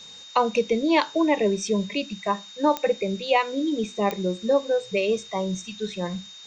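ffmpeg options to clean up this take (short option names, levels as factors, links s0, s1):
-af "adeclick=t=4,bandreject=f=3700:w=30,afftdn=nr=24:nf=-44"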